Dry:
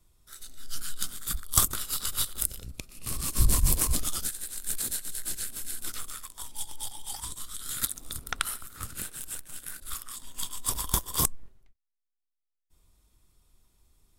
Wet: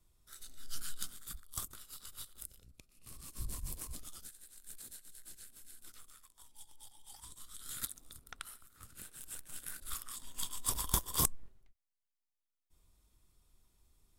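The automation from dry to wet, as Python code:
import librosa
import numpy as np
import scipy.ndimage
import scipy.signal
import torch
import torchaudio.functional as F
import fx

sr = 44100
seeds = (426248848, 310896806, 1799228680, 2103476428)

y = fx.gain(x, sr, db=fx.line((0.89, -6.5), (1.55, -19.0), (6.92, -19.0), (7.76, -9.0), (8.17, -17.0), (8.83, -17.0), (9.56, -5.0)))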